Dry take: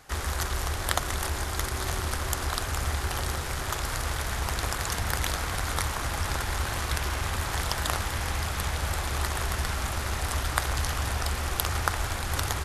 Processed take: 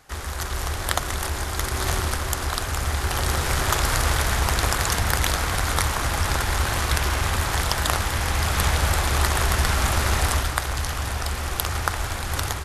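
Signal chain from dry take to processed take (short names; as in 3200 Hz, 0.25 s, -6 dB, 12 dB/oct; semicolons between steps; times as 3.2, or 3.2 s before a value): AGC gain up to 11.5 dB; gain -1 dB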